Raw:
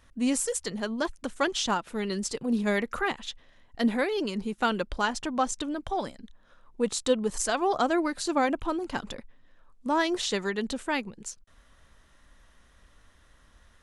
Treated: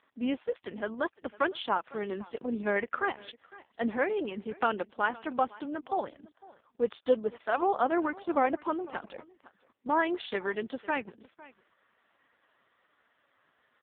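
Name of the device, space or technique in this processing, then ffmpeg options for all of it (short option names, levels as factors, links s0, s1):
satellite phone: -filter_complex "[0:a]asettb=1/sr,asplit=3[s0][s1][s2];[s0]atrim=end=1.304[s3];[s1]atrim=start=1.3:end=1.71,asetpts=PTS-STARTPTS,afade=t=in:d=0.004:c=qsin,afade=t=out:st=0.406:d=0.004:c=qsin,equalizer=f=210:w=5.3:g=-3.5[s4];[s2]atrim=start=1.706[s5];[s3][s4]acrossfade=d=0.004:c1=hsin:c2=qsin[s6];[s6][s5]acrossfade=d=0.004:c1=qsin:c2=hsin,highpass=320,lowpass=3400,aecho=1:1:506:0.0891" -ar 8000 -c:a libopencore_amrnb -b:a 4750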